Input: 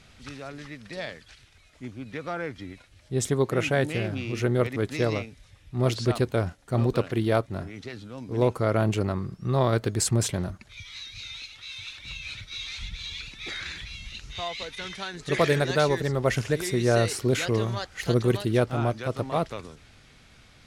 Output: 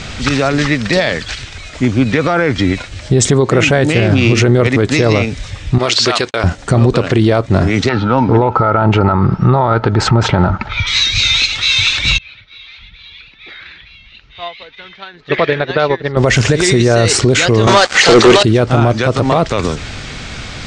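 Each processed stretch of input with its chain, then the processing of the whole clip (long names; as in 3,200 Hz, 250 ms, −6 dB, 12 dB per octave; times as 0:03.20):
0:05.78–0:06.44: noise gate −37 dBFS, range −48 dB + resonant band-pass 3,300 Hz, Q 0.51
0:07.89–0:10.87: high-frequency loss of the air 250 metres + hollow resonant body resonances 890/1,300 Hz, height 17 dB, ringing for 30 ms
0:12.18–0:16.17: low-pass filter 3,700 Hz 24 dB per octave + low-shelf EQ 300 Hz −8 dB + expander for the loud parts 2.5 to 1, over −36 dBFS
0:17.67–0:18.43: band-pass filter 390–6,700 Hz + leveller curve on the samples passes 5
whole clip: Butterworth low-pass 8,500 Hz 48 dB per octave; downward compressor 2 to 1, threshold −33 dBFS; boost into a limiter +28.5 dB; level −1 dB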